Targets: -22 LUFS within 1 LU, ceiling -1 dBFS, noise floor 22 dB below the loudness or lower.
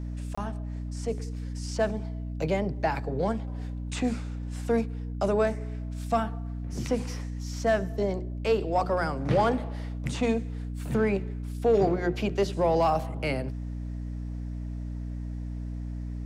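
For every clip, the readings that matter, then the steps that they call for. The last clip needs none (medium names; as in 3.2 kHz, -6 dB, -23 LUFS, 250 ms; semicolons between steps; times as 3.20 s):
dropouts 1; longest dropout 25 ms; hum 60 Hz; highest harmonic 300 Hz; hum level -32 dBFS; loudness -29.5 LUFS; peak level -11.0 dBFS; loudness target -22.0 LUFS
-> interpolate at 0.35 s, 25 ms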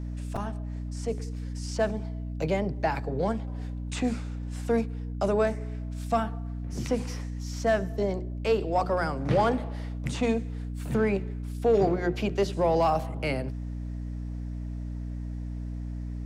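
dropouts 0; hum 60 Hz; highest harmonic 300 Hz; hum level -32 dBFS
-> de-hum 60 Hz, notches 5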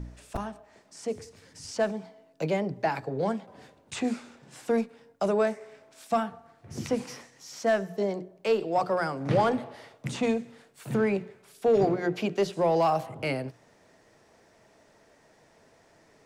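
hum not found; loudness -29.0 LUFS; peak level -12.0 dBFS; loudness target -22.0 LUFS
-> trim +7 dB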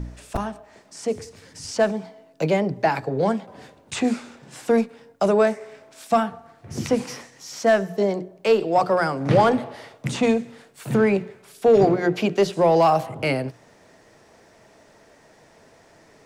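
loudness -22.0 LUFS; peak level -5.0 dBFS; noise floor -54 dBFS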